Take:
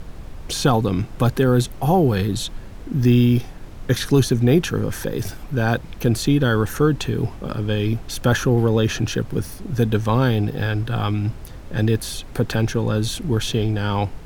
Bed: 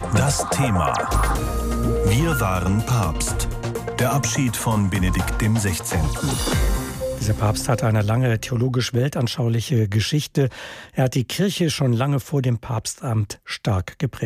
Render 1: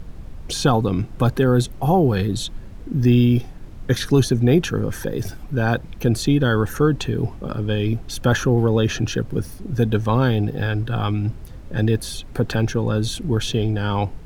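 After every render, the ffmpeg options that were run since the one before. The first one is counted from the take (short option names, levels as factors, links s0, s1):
-af "afftdn=nr=6:nf=-37"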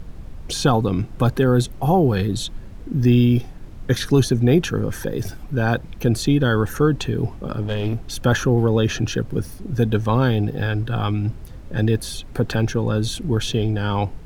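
-filter_complex "[0:a]asettb=1/sr,asplit=3[s0][s1][s2];[s0]atrim=end=7.614[s3];[s1]atrim=start=7.61:end=8.22,asetpts=PTS-STARTPTS,afade=t=in:d=0.004:c=qsin,afade=t=out:st=0.606:d=0.004:c=qsin,aeval=exprs='clip(val(0),-1,0.1)':c=same[s4];[s2]atrim=start=8.216[s5];[s3][s4]acrossfade=d=0.004:c1=hsin:c2=qsin[s6];[s6][s5]acrossfade=d=0.004:c1=qsin:c2=hsin"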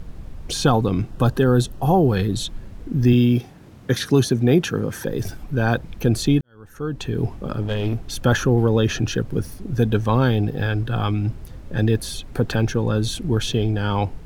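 -filter_complex "[0:a]asettb=1/sr,asplit=3[s0][s1][s2];[s0]atrim=end=1.114[s3];[s1]atrim=start=1.11:end=2.09,asetpts=PTS-STARTPTS,afade=t=in:d=0.004:c=qsin,afade=t=out:st=0.976:d=0.004:c=qsin,asuperstop=centerf=2200:order=4:qfactor=4.8[s4];[s2]atrim=start=2.086[s5];[s3][s4]acrossfade=d=0.004:c1=hsin:c2=qsin[s6];[s6][s5]acrossfade=d=0.004:c1=qsin:c2=hsin,asettb=1/sr,asplit=3[s7][s8][s9];[s7]atrim=end=3.134[s10];[s8]atrim=start=3.13:end=5.07,asetpts=PTS-STARTPTS,afade=t=in:d=0.004:c=qsin,afade=t=out:st=1.936:d=0.004:c=qsin,highpass=110[s11];[s9]atrim=start=5.066[s12];[s10][s11]acrossfade=d=0.004:c1=hsin:c2=qsin[s13];[s13][s12]acrossfade=d=0.004:c1=qsin:c2=hsin,asplit=2[s14][s15];[s14]atrim=end=6.41,asetpts=PTS-STARTPTS,afade=t=out:st=6.406:d=0.004:c=hsin[s16];[s15]atrim=start=6.41,asetpts=PTS-STARTPTS,afade=t=in:d=0.79:c=qua[s17];[s16][s17]concat=n=2:v=0:a=1"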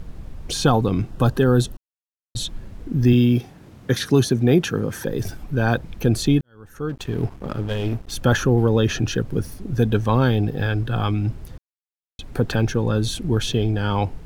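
-filter_complex "[0:a]asettb=1/sr,asplit=3[s0][s1][s2];[s0]atrim=end=6.894[s3];[s1]atrim=start=6.89:end=8.12,asetpts=PTS-STARTPTS,afade=t=in:d=0.004:c=qsin,afade=t=out:st=1.226:d=0.004:c=qsin,aeval=exprs='sgn(val(0))*max(abs(val(0))-0.0112,0)':c=same[s4];[s2]atrim=start=8.116[s5];[s3][s4]acrossfade=d=0.004:c1=hsin:c2=qsin[s6];[s6][s5]acrossfade=d=0.004:c1=qsin:c2=hsin,asplit=5[s7][s8][s9][s10][s11];[s7]atrim=end=1.77,asetpts=PTS-STARTPTS,afade=t=out:st=1.766:d=0.004:c=hsin[s12];[s8]atrim=start=1.77:end=2.35,asetpts=PTS-STARTPTS,volume=0[s13];[s9]atrim=start=2.35:end=11.58,asetpts=PTS-STARTPTS,afade=t=in:d=0.004:c=hsin,afade=t=out:st=9.226:d=0.004:c=hsin[s14];[s10]atrim=start=11.58:end=12.19,asetpts=PTS-STARTPTS,volume=0[s15];[s11]atrim=start=12.19,asetpts=PTS-STARTPTS,afade=t=in:d=0.004:c=hsin[s16];[s12][s13][s14][s15][s16]concat=n=5:v=0:a=1"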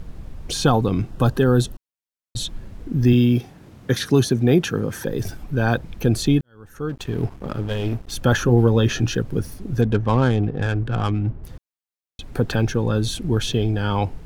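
-filter_complex "[0:a]asettb=1/sr,asplit=3[s0][s1][s2];[s0]atrim=end=8.454[s3];[s1]atrim=start=8.45:end=9.15,asetpts=PTS-STARTPTS,afade=t=in:d=0.004:c=qsin,afade=t=out:st=0.696:d=0.004:c=qsin,asplit=2[s4][s5];[s5]adelay=17,volume=0.376[s6];[s4][s6]amix=inputs=2:normalize=0,atrim=end_sample=30870[s7];[s2]atrim=start=9.146[s8];[s3][s7]acrossfade=d=0.004:c1=hsin:c2=qsin[s9];[s9][s8]acrossfade=d=0.004:c1=qsin:c2=hsin,asettb=1/sr,asplit=3[s10][s11][s12];[s10]atrim=end=9.814[s13];[s11]atrim=start=9.81:end=11.44,asetpts=PTS-STARTPTS,afade=t=in:d=0.004:c=qsin,afade=t=out:st=1.626:d=0.004:c=qsin,adynamicsmooth=sensitivity=2.5:basefreq=1400[s14];[s12]atrim=start=11.436[s15];[s13][s14]acrossfade=d=0.004:c1=hsin:c2=qsin[s16];[s16][s15]acrossfade=d=0.004:c1=qsin:c2=hsin"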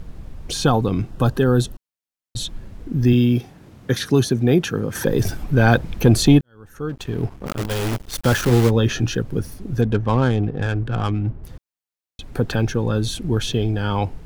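-filter_complex "[0:a]asettb=1/sr,asplit=3[s0][s1][s2];[s0]atrim=end=4.954[s3];[s1]atrim=start=4.95:end=6.39,asetpts=PTS-STARTPTS,afade=t=in:d=0.004:c=qsin,afade=t=out:st=1.436:d=0.004:c=qsin,acontrast=61[s4];[s2]atrim=start=6.386[s5];[s3][s4]acrossfade=d=0.004:c1=hsin:c2=qsin[s6];[s6][s5]acrossfade=d=0.004:c1=qsin:c2=hsin,asplit=3[s7][s8][s9];[s7]afade=t=out:st=7.46:d=0.02[s10];[s8]acrusher=bits=5:dc=4:mix=0:aa=0.000001,afade=t=in:st=7.46:d=0.02,afade=t=out:st=8.69:d=0.02[s11];[s9]afade=t=in:st=8.69:d=0.02[s12];[s10][s11][s12]amix=inputs=3:normalize=0"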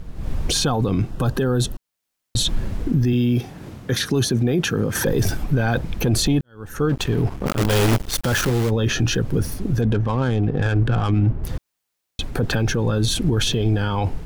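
-af "dynaudnorm=f=160:g=3:m=4.47,alimiter=limit=0.266:level=0:latency=1:release=18"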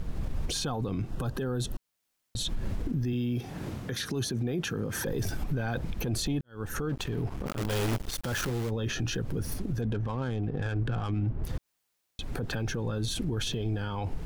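-af "acompressor=threshold=0.0708:ratio=6,alimiter=limit=0.0708:level=0:latency=1:release=188"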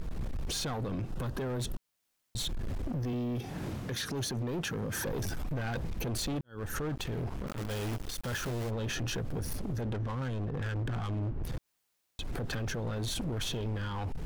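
-af "asoftclip=type=hard:threshold=0.0282"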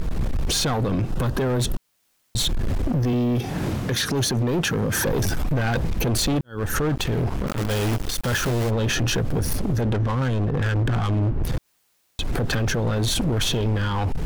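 -af "volume=3.98"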